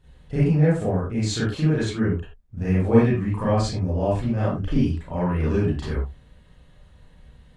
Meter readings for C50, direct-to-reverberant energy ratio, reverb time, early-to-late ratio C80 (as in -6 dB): 0.0 dB, -10.0 dB, no single decay rate, 6.5 dB